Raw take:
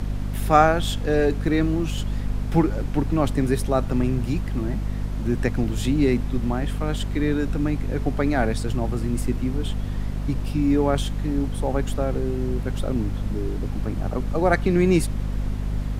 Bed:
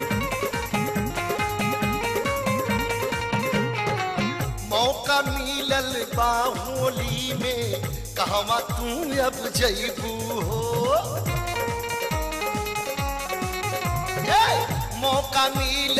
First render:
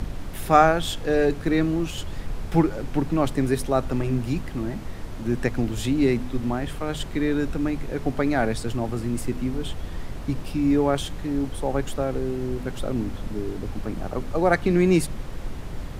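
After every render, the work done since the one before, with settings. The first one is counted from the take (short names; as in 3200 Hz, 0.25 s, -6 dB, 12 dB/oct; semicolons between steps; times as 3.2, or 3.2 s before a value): de-hum 50 Hz, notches 5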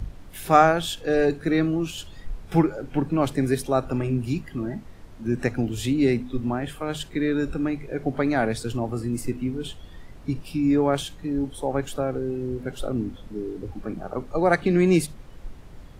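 noise print and reduce 11 dB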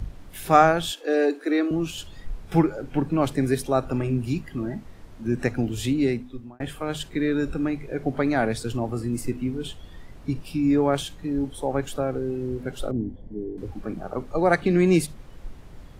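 0.92–1.71 elliptic high-pass 280 Hz; 5.9–6.6 fade out; 12.91–13.58 running mean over 34 samples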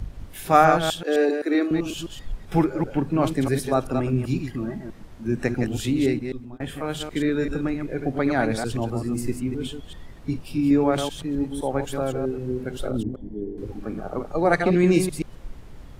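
reverse delay 0.129 s, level -6 dB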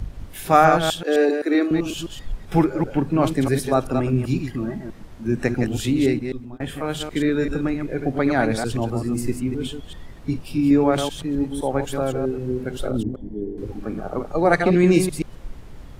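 gain +2.5 dB; limiter -2 dBFS, peak gain reduction 2 dB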